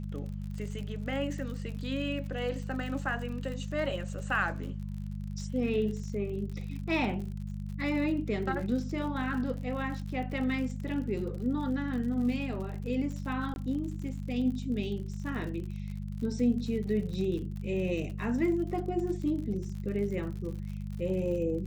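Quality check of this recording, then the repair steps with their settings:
crackle 59/s -39 dBFS
hum 50 Hz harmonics 4 -37 dBFS
13.54–13.56 gap 21 ms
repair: de-click; de-hum 50 Hz, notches 4; interpolate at 13.54, 21 ms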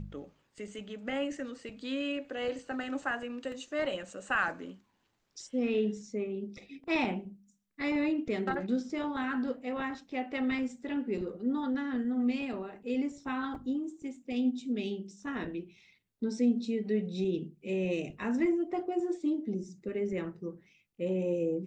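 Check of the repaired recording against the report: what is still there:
none

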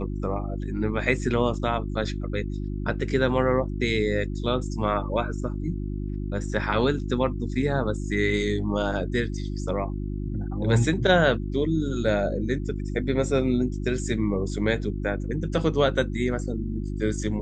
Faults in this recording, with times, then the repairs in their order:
hum 50 Hz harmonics 7 -30 dBFS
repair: de-hum 50 Hz, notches 7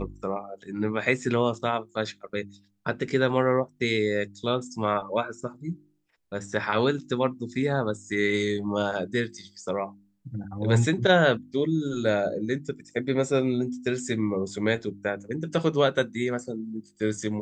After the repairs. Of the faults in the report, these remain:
none

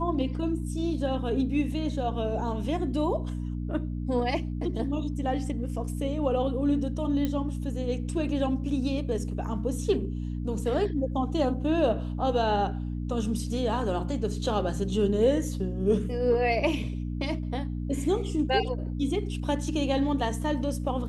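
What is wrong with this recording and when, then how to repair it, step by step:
hum 60 Hz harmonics 5 -32 dBFS
7.25 pop -16 dBFS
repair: de-click; de-hum 60 Hz, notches 5

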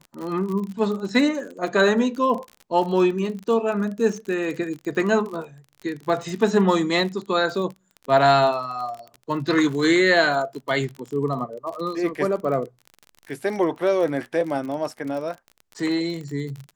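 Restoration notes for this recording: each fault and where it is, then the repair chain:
crackle 37/s -30 dBFS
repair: de-click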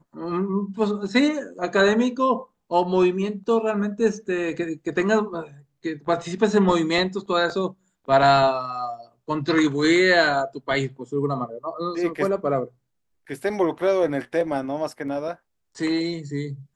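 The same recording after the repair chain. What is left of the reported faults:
none

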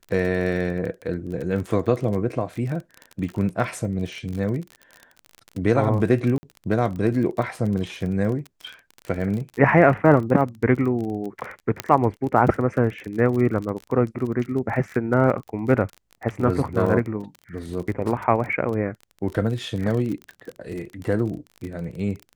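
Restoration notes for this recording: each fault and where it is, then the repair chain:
crackle 36/s -29 dBFS
6.38–6.43 gap 50 ms
11.8 pop -7 dBFS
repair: de-click; interpolate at 6.38, 50 ms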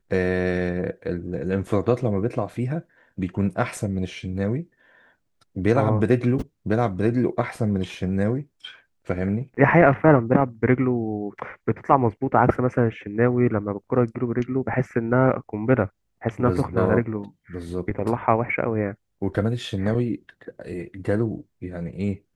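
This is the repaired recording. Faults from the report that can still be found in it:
none

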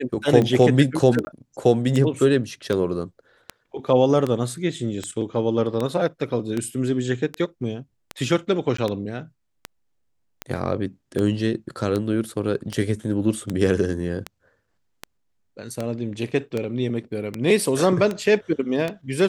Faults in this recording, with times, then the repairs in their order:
tick 78 rpm -12 dBFS
1.25–1.27 gap 20 ms
8.77–8.78 gap 14 ms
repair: de-click; interpolate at 1.25, 20 ms; interpolate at 8.77, 14 ms

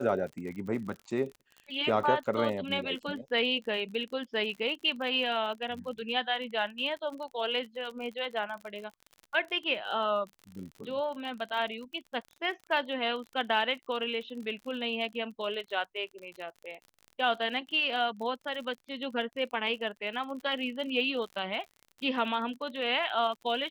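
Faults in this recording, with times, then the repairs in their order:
crackle 43/s -39 dBFS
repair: de-click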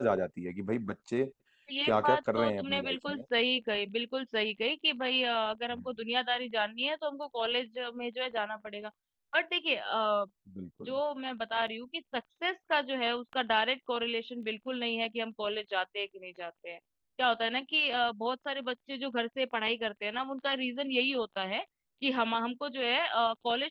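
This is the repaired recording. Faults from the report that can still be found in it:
none

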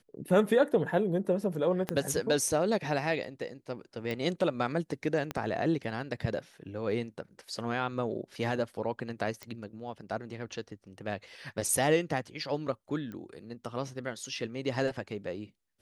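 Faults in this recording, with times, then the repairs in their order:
1.89 pop -16 dBFS
4.11 pop
5.31 pop -19 dBFS
9.43 pop -23 dBFS
13.12 pop -30 dBFS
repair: de-click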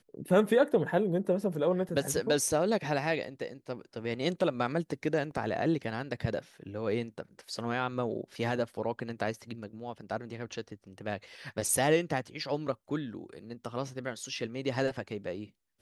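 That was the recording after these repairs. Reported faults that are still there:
1.89 pop
4.11 pop
5.31 pop

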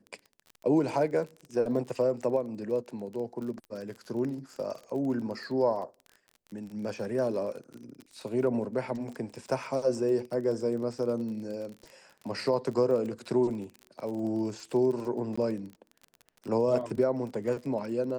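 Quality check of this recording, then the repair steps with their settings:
crackle 31/s -37 dBFS
15.36–15.38 gap 15 ms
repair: de-click; interpolate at 15.36, 15 ms

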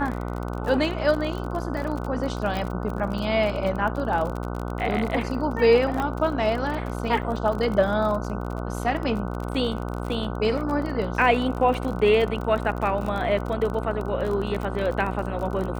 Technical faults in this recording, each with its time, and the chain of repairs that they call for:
buzz 60 Hz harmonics 25 -30 dBFS
crackle 37/s -29 dBFS
2.57 pop -16 dBFS
6 pop -15 dBFS
7.22–7.23 gap 7 ms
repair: de-click; de-hum 60 Hz, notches 25; interpolate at 7.22, 7 ms

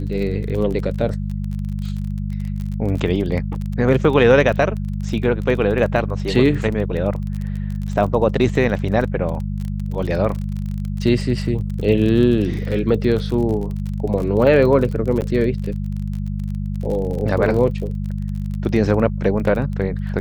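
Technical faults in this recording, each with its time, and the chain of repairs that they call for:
crackle 31/s -26 dBFS
hum 50 Hz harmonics 4 -24 dBFS
15.21–15.22 gap 8.8 ms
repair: de-click; de-hum 50 Hz, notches 4; interpolate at 15.21, 8.8 ms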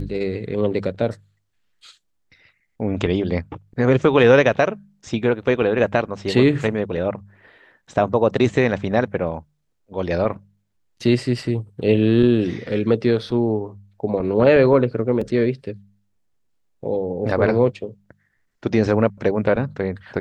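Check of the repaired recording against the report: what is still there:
none

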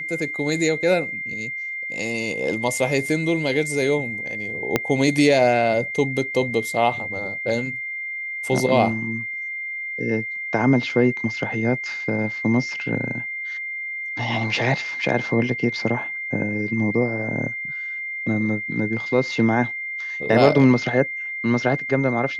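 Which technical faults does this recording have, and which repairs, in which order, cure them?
tone 2100 Hz -27 dBFS
4.76 pop -4 dBFS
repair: de-click; notch 2100 Hz, Q 30

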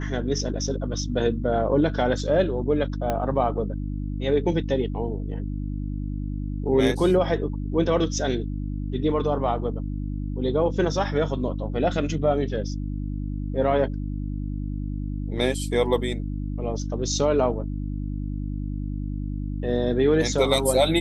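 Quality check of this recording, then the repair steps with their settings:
hum 50 Hz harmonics 6 -29 dBFS
3.1 pop -12 dBFS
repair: de-click; de-hum 50 Hz, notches 6

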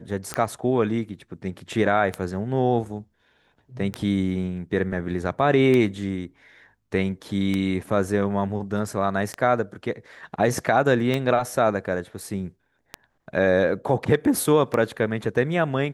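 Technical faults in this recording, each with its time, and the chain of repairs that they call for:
tick 33 1/3 rpm -12 dBFS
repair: de-click

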